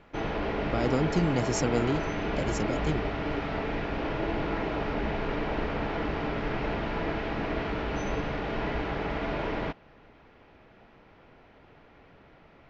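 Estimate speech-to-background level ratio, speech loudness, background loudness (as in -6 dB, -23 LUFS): 1.0 dB, -30.5 LUFS, -31.5 LUFS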